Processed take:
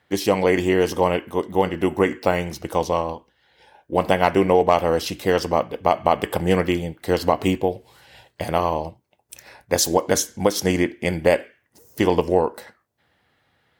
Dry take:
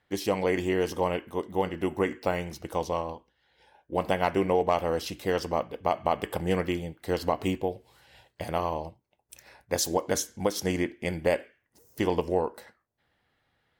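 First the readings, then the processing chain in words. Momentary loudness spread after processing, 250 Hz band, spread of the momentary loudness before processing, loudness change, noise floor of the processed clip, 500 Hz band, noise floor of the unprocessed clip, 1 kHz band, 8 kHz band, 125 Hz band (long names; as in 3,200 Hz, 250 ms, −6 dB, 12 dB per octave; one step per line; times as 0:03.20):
7 LU, +8.0 dB, 7 LU, +8.0 dB, −67 dBFS, +8.0 dB, −75 dBFS, +8.0 dB, +8.0 dB, +7.5 dB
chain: high-pass filter 65 Hz
level +8 dB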